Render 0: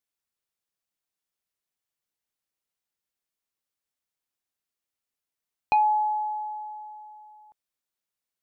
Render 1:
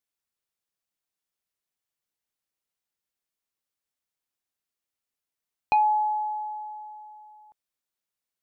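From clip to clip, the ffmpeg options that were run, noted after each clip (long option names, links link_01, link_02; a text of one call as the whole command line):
ffmpeg -i in.wav -af anull out.wav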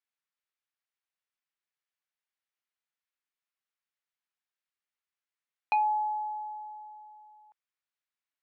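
ffmpeg -i in.wav -af "bandpass=frequency=1800:width_type=q:width=0.92:csg=0" out.wav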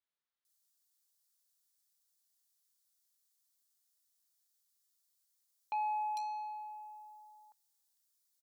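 ffmpeg -i in.wav -filter_complex "[0:a]aexciter=amount=9.3:drive=2.7:freq=3600,asoftclip=type=tanh:threshold=-29dB,acrossover=split=3000[link_01][link_02];[link_02]adelay=450[link_03];[link_01][link_03]amix=inputs=2:normalize=0,volume=-3dB" out.wav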